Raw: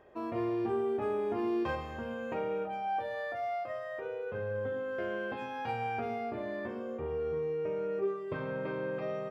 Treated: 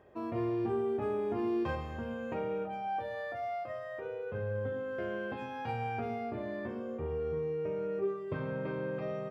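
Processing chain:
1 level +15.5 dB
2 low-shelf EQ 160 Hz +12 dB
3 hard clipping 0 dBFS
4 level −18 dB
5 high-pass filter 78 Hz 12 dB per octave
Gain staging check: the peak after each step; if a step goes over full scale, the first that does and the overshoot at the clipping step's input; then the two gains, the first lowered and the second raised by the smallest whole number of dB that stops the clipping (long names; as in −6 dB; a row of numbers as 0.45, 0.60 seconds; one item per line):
−7.5, −5.0, −5.0, −23.0, −23.5 dBFS
no step passes full scale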